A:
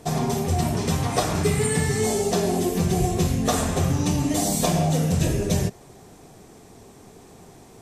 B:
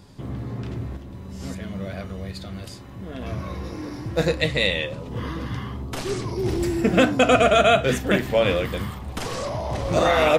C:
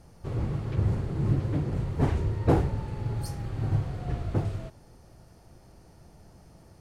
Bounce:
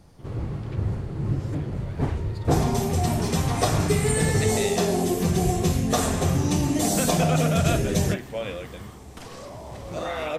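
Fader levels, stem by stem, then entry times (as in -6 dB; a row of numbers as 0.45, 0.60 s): -0.5, -11.5, -0.5 dB; 2.45, 0.00, 0.00 s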